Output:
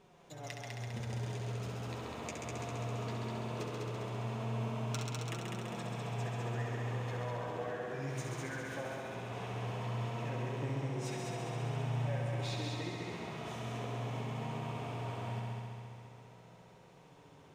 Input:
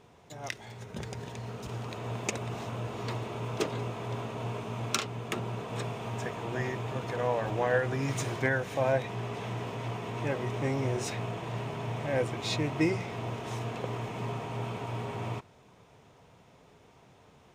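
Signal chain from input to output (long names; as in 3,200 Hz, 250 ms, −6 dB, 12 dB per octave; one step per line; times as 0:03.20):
downward compressor, threshold −35 dBFS, peak gain reduction 13 dB
flanger 0.18 Hz, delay 5.2 ms, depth 9.7 ms, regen +15%
echo machine with several playback heads 67 ms, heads all three, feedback 70%, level −7 dB
level −2 dB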